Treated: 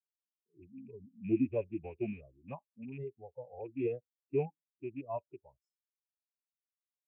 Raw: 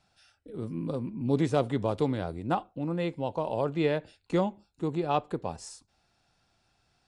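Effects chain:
loose part that buzzes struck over −30 dBFS, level −18 dBFS
phase-vocoder pitch shift with formants kept −4 semitones
every bin expanded away from the loudest bin 2.5 to 1
level −6 dB

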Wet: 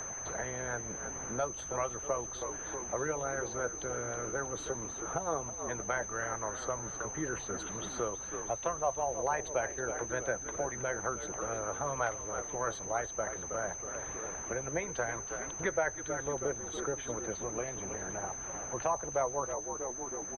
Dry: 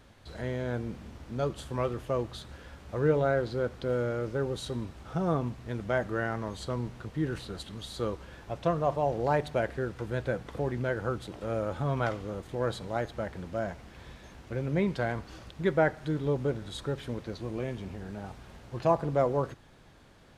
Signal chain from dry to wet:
low shelf with overshoot 170 Hz +12.5 dB, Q 1.5
harmonic and percussive parts rebalanced harmonic −16 dB
three-way crossover with the lows and the highs turned down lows −17 dB, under 390 Hz, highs −17 dB, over 2,500 Hz
steady tone 6,200 Hz −45 dBFS
echo with shifted repeats 319 ms, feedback 49%, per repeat −62 Hz, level −12 dB
multiband upward and downward compressor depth 70%
level +4 dB

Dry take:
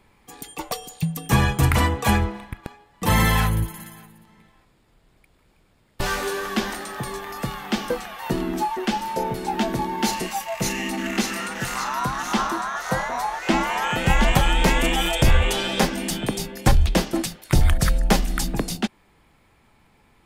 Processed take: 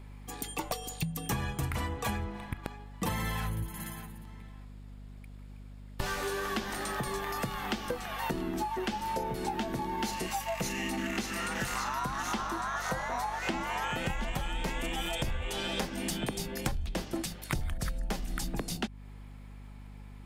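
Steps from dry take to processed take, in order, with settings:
downward compressor 12 to 1, threshold −30 dBFS, peak gain reduction 19.5 dB
mains hum 50 Hz, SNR 12 dB

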